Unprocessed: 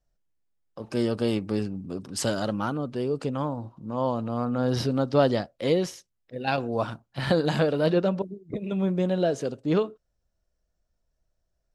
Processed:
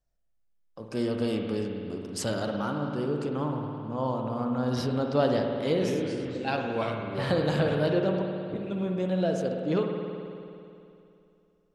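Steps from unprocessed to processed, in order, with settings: 5.53–7.75 s: ever faster or slower copies 163 ms, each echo -3 st, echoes 3, each echo -6 dB; spring tank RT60 2.7 s, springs 54 ms, chirp 55 ms, DRR 2 dB; trim -4 dB

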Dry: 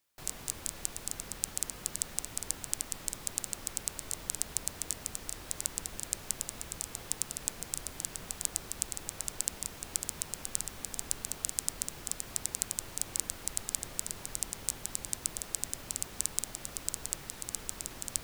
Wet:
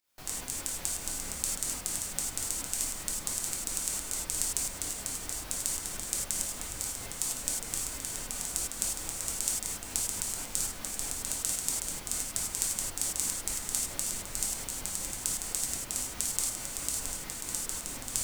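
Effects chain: volume shaper 135 bpm, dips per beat 2, -10 dB, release 145 ms; gated-style reverb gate 120 ms flat, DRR -3.5 dB

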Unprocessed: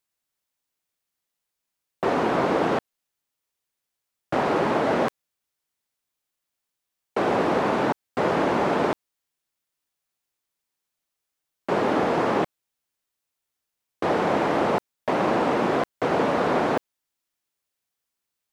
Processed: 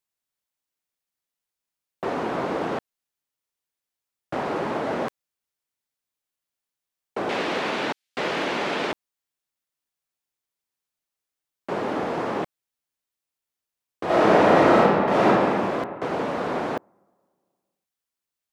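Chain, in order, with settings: 7.29–8.92 s: frequency weighting D; overload inside the chain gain 13 dB; 14.05–15.25 s: reverb throw, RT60 2.2 s, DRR -11 dB; trim -4.5 dB

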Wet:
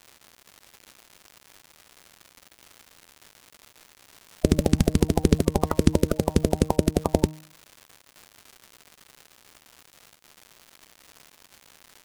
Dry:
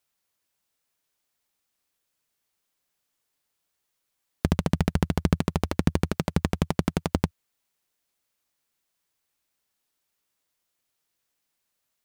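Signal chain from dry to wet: coarse spectral quantiser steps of 30 dB; de-hum 155.1 Hz, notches 7; crackle 250 per s -39 dBFS; trim +4.5 dB

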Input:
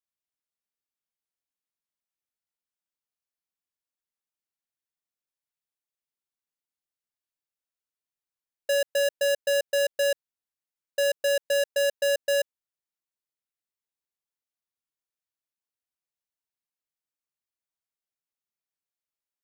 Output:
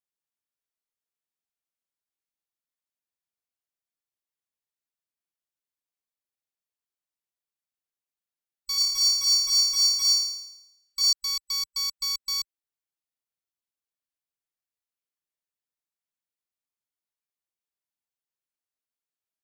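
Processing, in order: split-band scrambler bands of 4 kHz; peak limiter -17.5 dBFS, peak gain reduction 3 dB; 8.75–11.13 s: flutter echo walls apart 4.7 m, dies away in 0.87 s; trim -2.5 dB

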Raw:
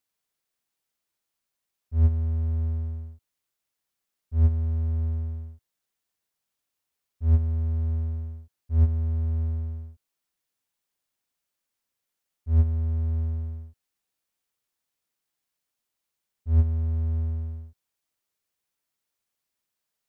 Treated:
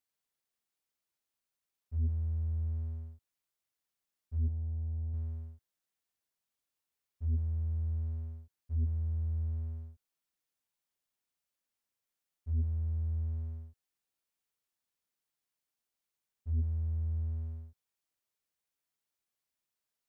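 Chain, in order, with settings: saturation -20.5 dBFS, distortion -11 dB; 4.48–5.14 s: rippled Chebyshev low-pass 970 Hz, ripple 3 dB; trim -6 dB

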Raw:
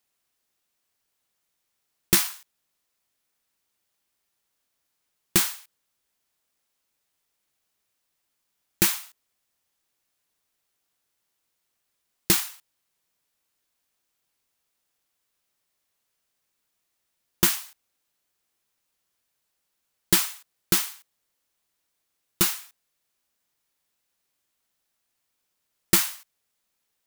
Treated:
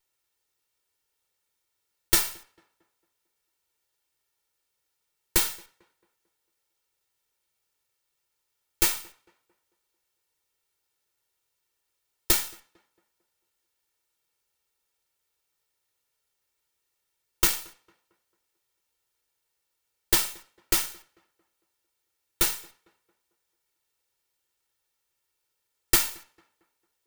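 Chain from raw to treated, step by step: comb filter that takes the minimum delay 2.2 ms; tape echo 224 ms, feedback 46%, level -23.5 dB, low-pass 1.9 kHz

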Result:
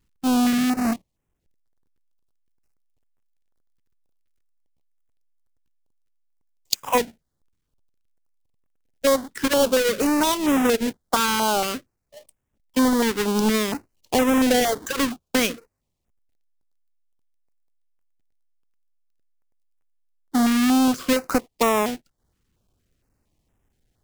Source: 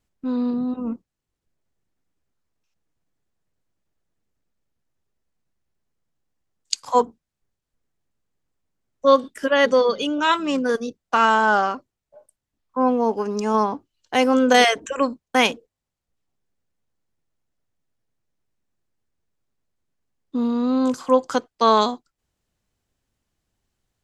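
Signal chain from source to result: square wave that keeps the level; compression 5:1, threshold -18 dBFS, peak gain reduction 11.5 dB; step-sequenced notch 4.3 Hz 660–4400 Hz; trim +1.5 dB

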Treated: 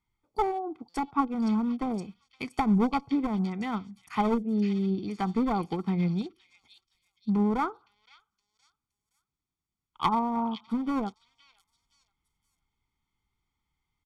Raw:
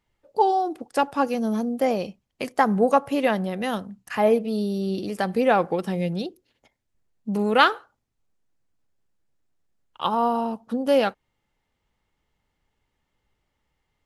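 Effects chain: low-pass that closes with the level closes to 620 Hz, closed at -18 dBFS; one-sided clip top -22 dBFS; comb 0.9 ms, depth 90%; on a send: repeats whose band climbs or falls 518 ms, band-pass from 3.7 kHz, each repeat 0.7 oct, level -1 dB; on the sum: buffer glitch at 0.89 s, samples 256, times 8; upward expansion 1.5:1, over -35 dBFS; trim -2 dB

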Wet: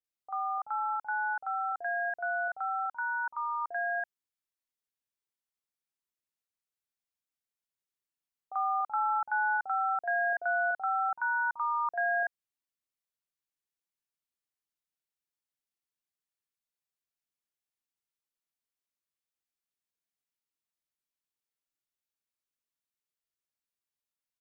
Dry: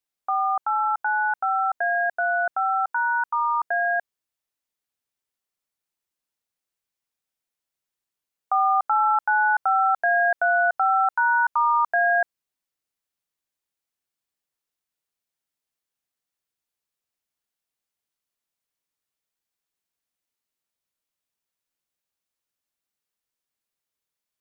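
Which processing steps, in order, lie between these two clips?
bands offset in time lows, highs 40 ms, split 650 Hz; trim -8.5 dB

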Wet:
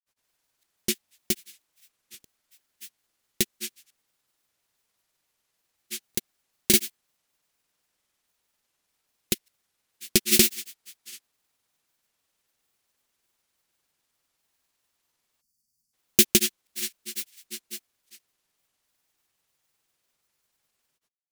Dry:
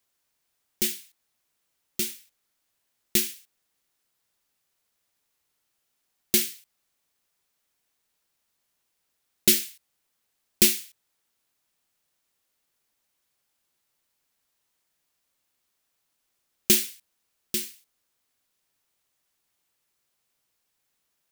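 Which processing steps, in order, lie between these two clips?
granulator 100 ms, grains 20 per s, spray 532 ms, pitch spread up and down by 0 st; spectral selection erased 15.41–15.93 s, 260–4400 Hz; trim +3 dB

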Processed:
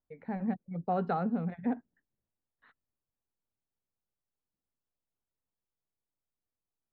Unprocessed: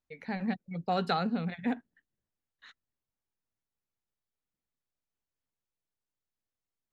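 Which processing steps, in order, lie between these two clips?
low-pass 1.1 kHz 12 dB/octave

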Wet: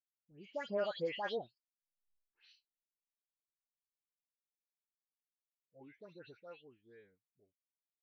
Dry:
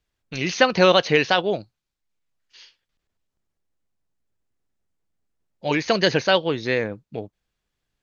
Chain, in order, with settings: Doppler pass-by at 2.13 s, 33 m/s, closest 2.3 m; phase dispersion highs, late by 137 ms, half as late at 2.3 kHz; spectral contrast expander 1.5:1; trim +5 dB

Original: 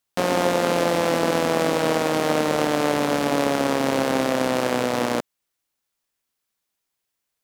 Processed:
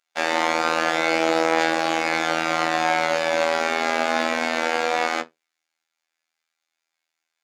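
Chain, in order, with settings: frequency weighting A; reverberation RT60 0.15 s, pre-delay 3 ms, DRR 0 dB; robot voice 81.3 Hz; treble shelf 7.5 kHz -10.5 dB; trim +2 dB

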